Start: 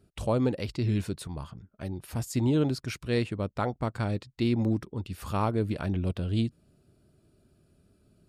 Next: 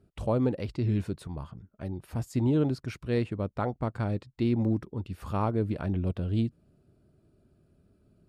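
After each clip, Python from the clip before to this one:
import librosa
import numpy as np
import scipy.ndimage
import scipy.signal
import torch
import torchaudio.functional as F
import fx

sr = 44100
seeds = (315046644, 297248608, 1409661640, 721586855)

y = fx.high_shelf(x, sr, hz=2400.0, db=-10.5)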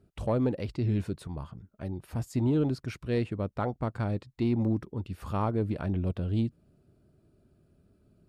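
y = 10.0 ** (-16.0 / 20.0) * np.tanh(x / 10.0 ** (-16.0 / 20.0))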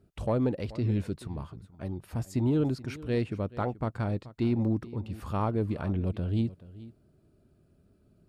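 y = x + 10.0 ** (-18.0 / 20.0) * np.pad(x, (int(431 * sr / 1000.0), 0))[:len(x)]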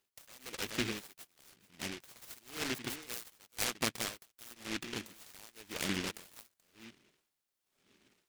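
y = fx.filter_lfo_highpass(x, sr, shape='sine', hz=0.97, low_hz=270.0, high_hz=4000.0, q=0.79)
y = fx.noise_mod_delay(y, sr, seeds[0], noise_hz=2300.0, depth_ms=0.42)
y = F.gain(torch.from_numpy(y), 1.0).numpy()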